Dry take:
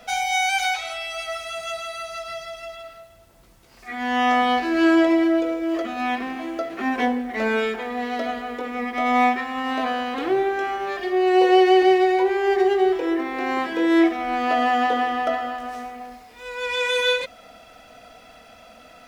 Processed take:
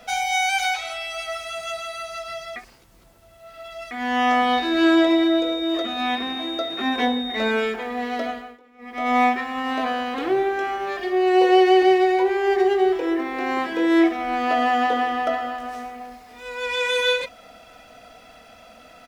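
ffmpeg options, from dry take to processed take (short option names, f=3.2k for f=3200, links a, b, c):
-filter_complex "[0:a]asettb=1/sr,asplit=3[a][b][c];[a]atrim=end=4.534[d];[b]atrim=start=4.53:end=7.51,asetpts=PTS-STARTPTS,afade=t=in:d=0.004:c=qsin,afade=t=out:st=2.976:d=0.004:c=qsin,aeval=exprs='val(0)+0.0316*sin(2*PI*3700*n/s)':c=same[e];[c]atrim=start=7.506[f];[d][e]acrossfade=d=0.004:c1=hsin:c2=qsin[g];[g][f]acrossfade=d=0.004:c1=qsin:c2=hsin,asplit=2[h][i];[i]afade=t=in:st=15.71:d=0.01,afade=t=out:st=16.73:d=0.01,aecho=0:1:550|1100:0.158489|0.0316979[j];[h][j]amix=inputs=2:normalize=0,asplit=5[k][l][m][n][o];[k]atrim=end=2.562[p];[l]atrim=start=2.558:end=3.912,asetpts=PTS-STARTPTS,areverse[q];[m]atrim=start=3.908:end=8.59,asetpts=PTS-STARTPTS,afade=t=out:st=4.332:d=0.35:silence=0.0668344[r];[n]atrim=start=8.59:end=8.78,asetpts=PTS-STARTPTS,volume=-23.5dB[s];[o]atrim=start=8.78,asetpts=PTS-STARTPTS,afade=t=in:d=0.35:silence=0.0668344[t];[p][q]acrossfade=d=0.004:c1=hsin:c2=hsin[u];[r][s][t]concat=n=3:v=0:a=1[v];[u][v]acrossfade=d=0.004:c1=hsin:c2=hsin"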